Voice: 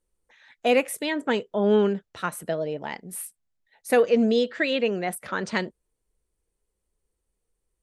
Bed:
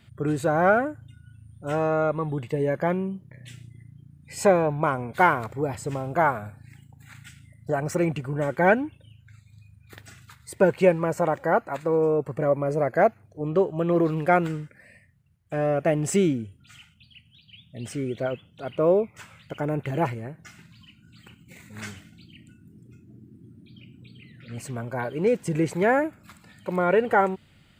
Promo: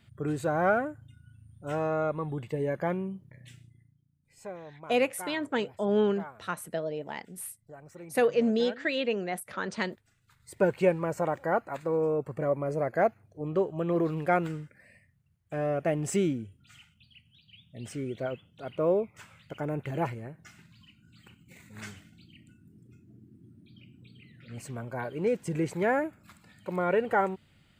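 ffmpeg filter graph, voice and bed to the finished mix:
ffmpeg -i stem1.wav -i stem2.wav -filter_complex "[0:a]adelay=4250,volume=-5dB[link_01];[1:a]volume=11.5dB,afade=type=out:start_time=3.35:duration=0.65:silence=0.141254,afade=type=in:start_time=10.22:duration=0.41:silence=0.141254[link_02];[link_01][link_02]amix=inputs=2:normalize=0" out.wav

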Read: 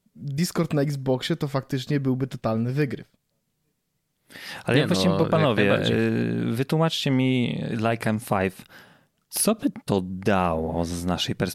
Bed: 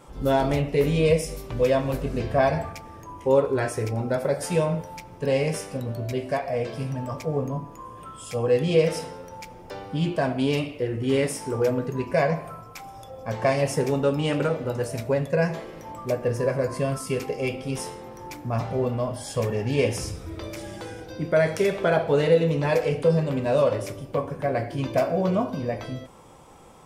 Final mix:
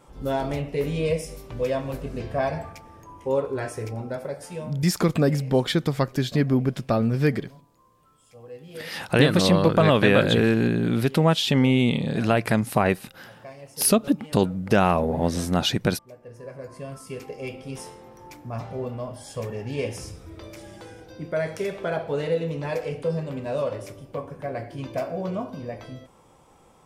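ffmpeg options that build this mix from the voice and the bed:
ffmpeg -i stem1.wav -i stem2.wav -filter_complex "[0:a]adelay=4450,volume=2.5dB[link_01];[1:a]volume=10dB,afade=type=out:start_time=3.92:duration=0.97:silence=0.158489,afade=type=in:start_time=16.22:duration=1.37:silence=0.188365[link_02];[link_01][link_02]amix=inputs=2:normalize=0" out.wav

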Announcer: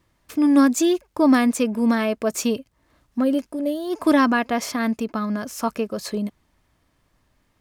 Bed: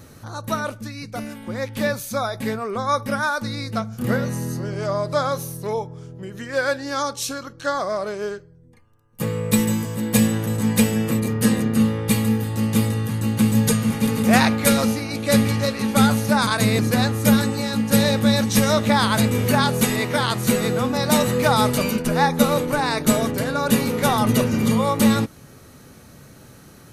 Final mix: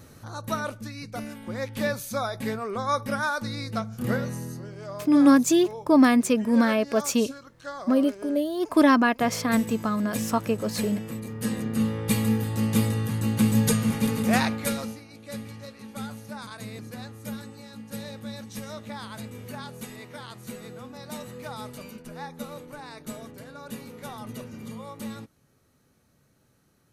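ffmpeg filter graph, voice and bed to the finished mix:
ffmpeg -i stem1.wav -i stem2.wav -filter_complex "[0:a]adelay=4700,volume=-1dB[link_01];[1:a]volume=5.5dB,afade=type=out:start_time=4.08:duration=0.67:silence=0.354813,afade=type=in:start_time=11.28:duration=1.04:silence=0.316228,afade=type=out:start_time=13.95:duration=1.1:silence=0.149624[link_02];[link_01][link_02]amix=inputs=2:normalize=0" out.wav

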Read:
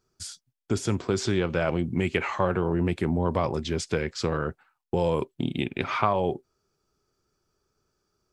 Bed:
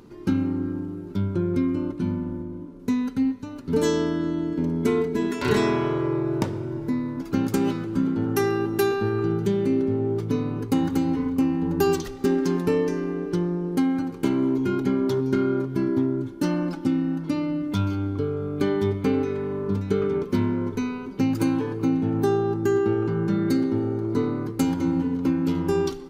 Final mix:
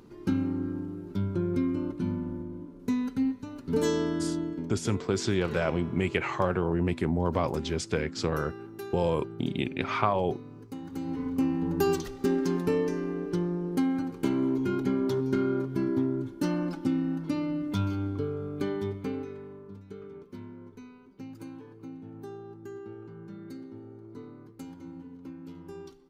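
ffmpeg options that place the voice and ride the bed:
ffmpeg -i stem1.wav -i stem2.wav -filter_complex "[0:a]adelay=4000,volume=-2dB[link_01];[1:a]volume=9dB,afade=type=out:start_time=4.39:duration=0.36:silence=0.211349,afade=type=in:start_time=10.84:duration=0.6:silence=0.211349,afade=type=out:start_time=18.04:duration=1.67:silence=0.158489[link_02];[link_01][link_02]amix=inputs=2:normalize=0" out.wav

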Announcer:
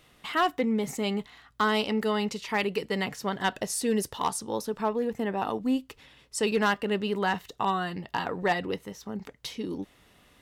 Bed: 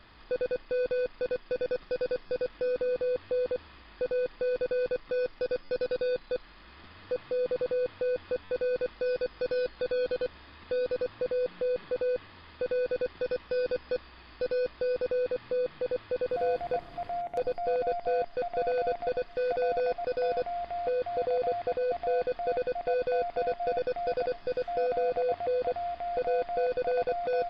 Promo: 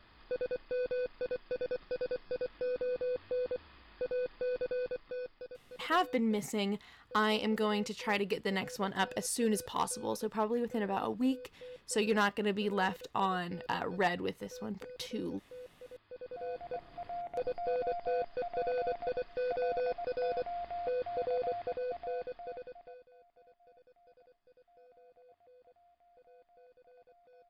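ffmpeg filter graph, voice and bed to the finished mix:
ffmpeg -i stem1.wav -i stem2.wav -filter_complex "[0:a]adelay=5550,volume=-4.5dB[link_01];[1:a]volume=9dB,afade=type=out:start_time=4.66:duration=0.91:silence=0.199526,afade=type=in:start_time=16.03:duration=1.44:silence=0.188365,afade=type=out:start_time=21.38:duration=1.68:silence=0.0398107[link_02];[link_01][link_02]amix=inputs=2:normalize=0" out.wav

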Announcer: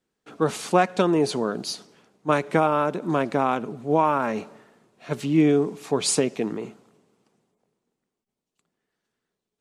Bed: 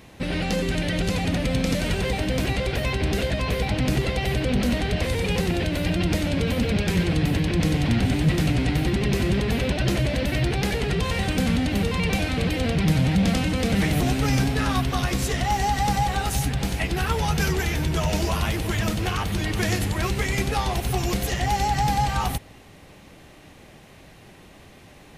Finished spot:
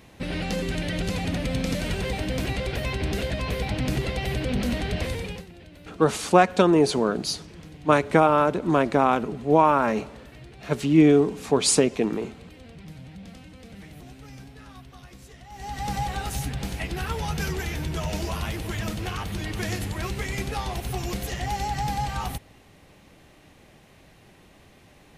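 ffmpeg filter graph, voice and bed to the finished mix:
ffmpeg -i stem1.wav -i stem2.wav -filter_complex "[0:a]adelay=5600,volume=2.5dB[link_01];[1:a]volume=13.5dB,afade=type=out:start_time=5.05:duration=0.41:silence=0.112202,afade=type=in:start_time=15.51:duration=0.46:silence=0.141254[link_02];[link_01][link_02]amix=inputs=2:normalize=0" out.wav

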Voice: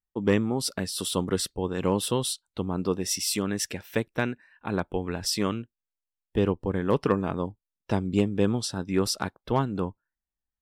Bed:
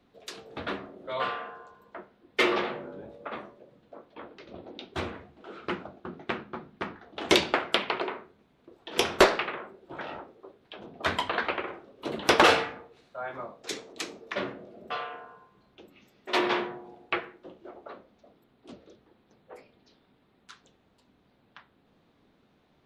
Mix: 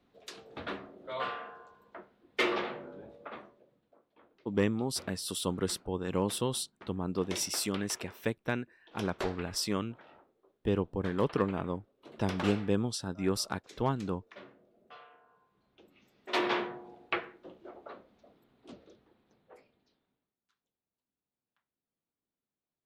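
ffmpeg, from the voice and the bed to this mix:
ffmpeg -i stem1.wav -i stem2.wav -filter_complex "[0:a]adelay=4300,volume=-5.5dB[link_01];[1:a]volume=10.5dB,afade=type=out:start_time=3.09:duration=0.89:silence=0.211349,afade=type=in:start_time=15.22:duration=1.37:silence=0.16788,afade=type=out:start_time=18.73:duration=1.62:silence=0.0421697[link_02];[link_01][link_02]amix=inputs=2:normalize=0" out.wav

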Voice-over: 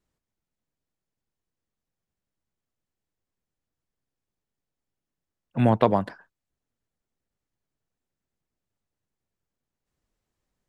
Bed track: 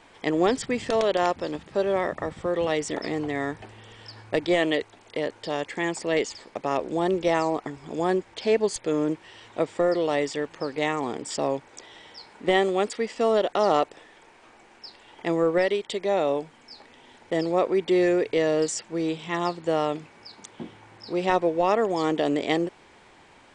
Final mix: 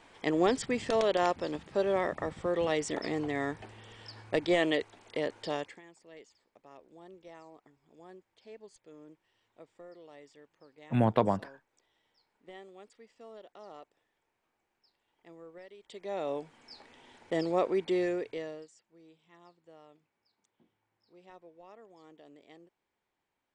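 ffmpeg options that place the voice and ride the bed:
ffmpeg -i stem1.wav -i stem2.wav -filter_complex "[0:a]adelay=5350,volume=-6dB[link_01];[1:a]volume=18dB,afade=type=out:start_time=5.51:duration=0.3:silence=0.0668344,afade=type=in:start_time=15.76:duration=0.95:silence=0.0749894,afade=type=out:start_time=17.66:duration=1.02:silence=0.0501187[link_02];[link_01][link_02]amix=inputs=2:normalize=0" out.wav

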